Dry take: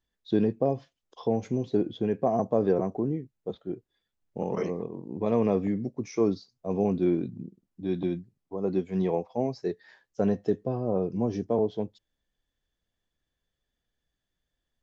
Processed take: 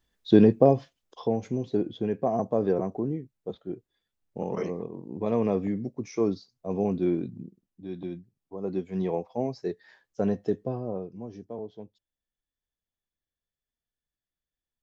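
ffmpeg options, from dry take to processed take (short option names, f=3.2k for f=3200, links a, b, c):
-af "volume=14.5dB,afade=t=out:st=0.63:d=0.73:silence=0.375837,afade=t=out:st=7.37:d=0.52:silence=0.446684,afade=t=in:st=7.89:d=1.4:silence=0.446684,afade=t=out:st=10.68:d=0.43:silence=0.281838"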